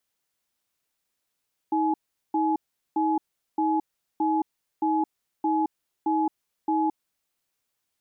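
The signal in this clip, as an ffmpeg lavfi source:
-f lavfi -i "aevalsrc='0.0668*(sin(2*PI*317*t)+sin(2*PI*846*t))*clip(min(mod(t,0.62),0.22-mod(t,0.62))/0.005,0,1)':d=5.21:s=44100"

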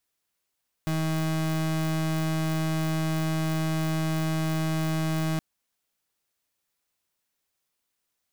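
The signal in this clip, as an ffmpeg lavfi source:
-f lavfi -i "aevalsrc='0.0473*(2*lt(mod(159*t,1),0.35)-1)':d=4.52:s=44100"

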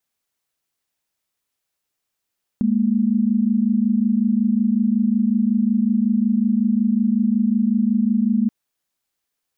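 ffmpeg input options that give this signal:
-f lavfi -i "aevalsrc='0.126*(sin(2*PI*207.65*t)+sin(2*PI*233.08*t))':d=5.88:s=44100"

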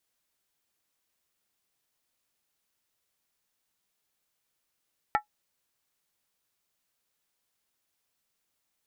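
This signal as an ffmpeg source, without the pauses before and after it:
-f lavfi -i "aevalsrc='0.133*pow(10,-3*t/0.11)*sin(2*PI*839*t)+0.0841*pow(10,-3*t/0.087)*sin(2*PI*1337.4*t)+0.0531*pow(10,-3*t/0.075)*sin(2*PI*1792.1*t)+0.0335*pow(10,-3*t/0.073)*sin(2*PI*1926.3*t)+0.0211*pow(10,-3*t/0.068)*sin(2*PI*2225.9*t)':d=0.63:s=44100"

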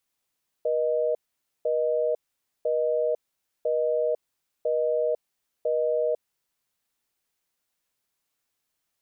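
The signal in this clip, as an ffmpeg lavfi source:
-f lavfi -i "aevalsrc='0.0596*(sin(2*PI*480*t)+sin(2*PI*620*t))*clip(min(mod(t,1),0.5-mod(t,1))/0.005,0,1)':d=5.51:s=44100"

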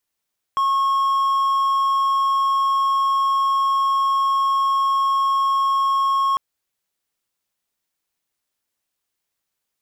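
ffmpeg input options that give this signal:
-f lavfi -i "aevalsrc='0.2*(1-4*abs(mod(1090*t+0.25,1)-0.5))':d=5.8:s=44100"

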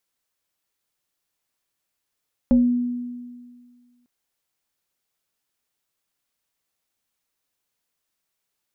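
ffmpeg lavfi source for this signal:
-f lavfi -i "aevalsrc='0.282*pow(10,-3*t/1.85)*sin(2*PI*244*t+0.61*pow(10,-3*t/0.32)*sin(2*PI*1.2*244*t))':d=1.55:s=44100"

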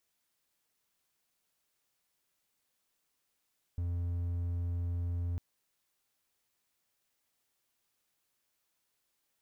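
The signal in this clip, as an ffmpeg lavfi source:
-f lavfi -i "aevalsrc='0.0335*(1-4*abs(mod(86.8*t+0.25,1)-0.5))':d=1.6:s=44100"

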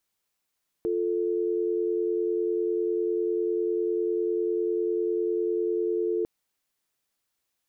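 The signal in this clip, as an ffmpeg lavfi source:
-f lavfi -i "aevalsrc='0.0473*(sin(2*PI*350*t)+sin(2*PI*440*t))':d=5.4:s=44100"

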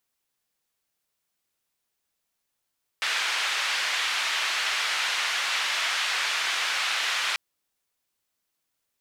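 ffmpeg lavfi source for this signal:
-f lavfi -i "anoisesrc=c=white:d=4.34:r=44100:seed=1,highpass=f=1300,lowpass=f=3100,volume=-11.8dB"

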